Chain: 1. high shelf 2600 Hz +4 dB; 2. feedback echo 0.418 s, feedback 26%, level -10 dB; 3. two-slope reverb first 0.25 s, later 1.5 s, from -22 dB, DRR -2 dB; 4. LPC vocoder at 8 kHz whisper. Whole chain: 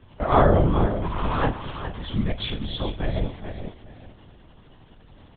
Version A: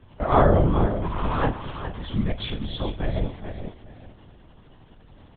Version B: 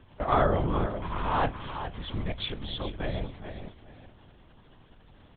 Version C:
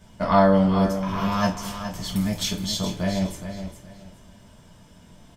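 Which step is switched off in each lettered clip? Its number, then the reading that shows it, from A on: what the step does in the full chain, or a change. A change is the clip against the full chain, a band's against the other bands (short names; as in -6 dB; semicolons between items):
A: 1, 4 kHz band -2.5 dB; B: 3, 125 Hz band -4.0 dB; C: 4, 250 Hz band +4.5 dB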